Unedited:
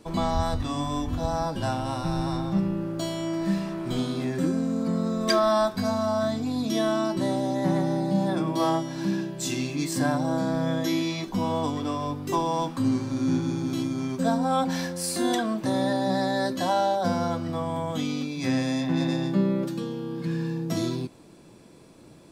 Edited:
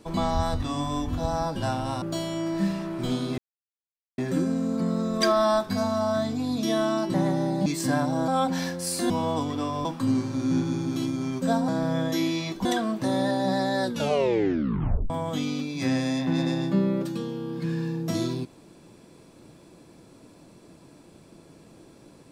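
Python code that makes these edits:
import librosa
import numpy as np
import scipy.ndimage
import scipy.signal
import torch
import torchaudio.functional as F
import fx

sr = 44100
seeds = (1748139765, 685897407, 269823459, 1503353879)

y = fx.edit(x, sr, fx.cut(start_s=2.02, length_s=0.87),
    fx.insert_silence(at_s=4.25, length_s=0.8),
    fx.cut(start_s=7.21, length_s=0.43),
    fx.cut(start_s=8.16, length_s=1.62),
    fx.swap(start_s=10.4, length_s=0.97, other_s=14.45, other_length_s=0.82),
    fx.cut(start_s=12.12, length_s=0.5),
    fx.tape_stop(start_s=16.43, length_s=1.29), tone=tone)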